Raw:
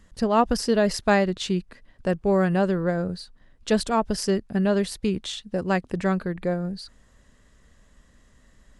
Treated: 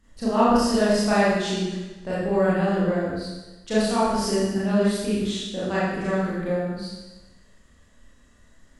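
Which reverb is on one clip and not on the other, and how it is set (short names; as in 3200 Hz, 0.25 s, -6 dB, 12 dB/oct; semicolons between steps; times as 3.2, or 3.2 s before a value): Schroeder reverb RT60 1.1 s, combs from 26 ms, DRR -10 dB; gain -9 dB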